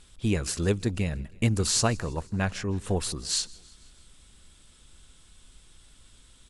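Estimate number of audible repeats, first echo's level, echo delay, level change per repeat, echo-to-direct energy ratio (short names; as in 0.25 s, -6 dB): 3, -24.0 dB, 0.162 s, -4.5 dB, -22.5 dB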